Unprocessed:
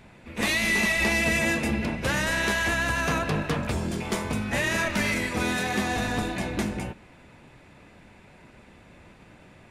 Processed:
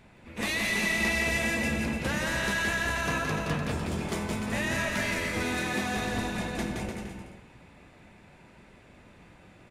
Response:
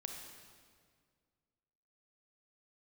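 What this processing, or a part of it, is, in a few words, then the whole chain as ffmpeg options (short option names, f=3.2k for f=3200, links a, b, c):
saturated reverb return: -filter_complex "[0:a]aecho=1:1:170|297.5|393.1|464.8|518.6:0.631|0.398|0.251|0.158|0.1,asplit=2[a][b];[1:a]atrim=start_sample=2205[c];[b][c]afir=irnorm=-1:irlink=0,asoftclip=type=tanh:threshold=-25.5dB,volume=-6.5dB[d];[a][d]amix=inputs=2:normalize=0,volume=-7dB"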